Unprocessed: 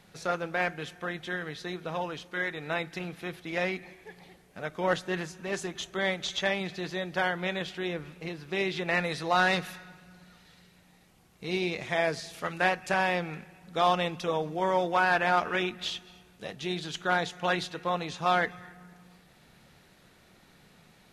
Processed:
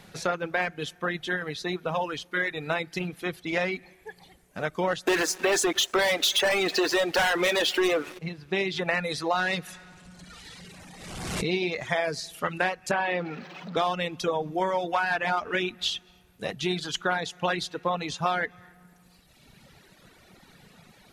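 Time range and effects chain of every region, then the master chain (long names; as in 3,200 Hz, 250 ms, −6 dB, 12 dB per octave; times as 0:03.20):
0:05.07–0:08.19: high-pass filter 290 Hz 24 dB per octave + leveller curve on the samples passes 5 + single-tap delay 298 ms −22 dB
0:09.67–0:11.51: converter with a step at zero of −46.5 dBFS + low-pass filter 10,000 Hz 24 dB per octave + background raised ahead of every attack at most 35 dB per second
0:12.91–0:13.77: converter with a step at zero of −34 dBFS + high-pass filter 210 Hz + high-frequency loss of the air 210 metres
whole clip: reverb reduction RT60 1.7 s; downward compressor, threshold −30 dBFS; level +7.5 dB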